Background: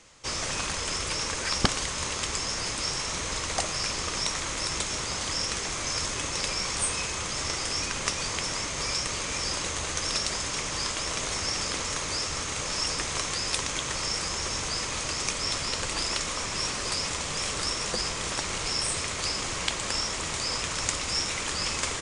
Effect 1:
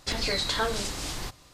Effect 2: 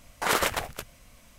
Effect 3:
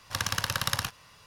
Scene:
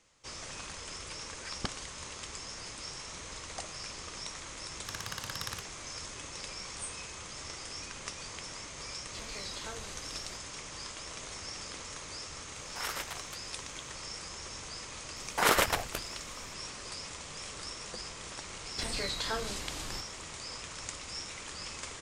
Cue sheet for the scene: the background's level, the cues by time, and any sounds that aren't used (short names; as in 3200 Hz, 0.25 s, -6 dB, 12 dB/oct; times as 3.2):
background -12.5 dB
4.74 add 3 -11.5 dB
9.07 add 1 -16.5 dB + notch 1700 Hz
12.54 add 2 -11.5 dB + HPF 980 Hz 6 dB/oct
15.16 add 2 -0.5 dB
18.71 add 1 -7.5 dB